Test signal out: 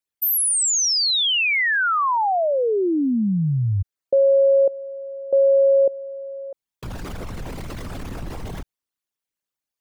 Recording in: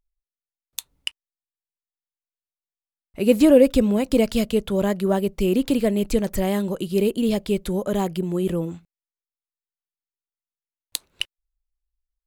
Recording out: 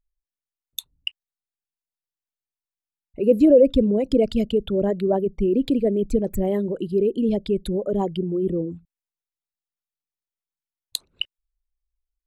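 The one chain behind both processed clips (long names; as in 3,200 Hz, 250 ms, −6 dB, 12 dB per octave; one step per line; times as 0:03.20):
spectral envelope exaggerated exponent 2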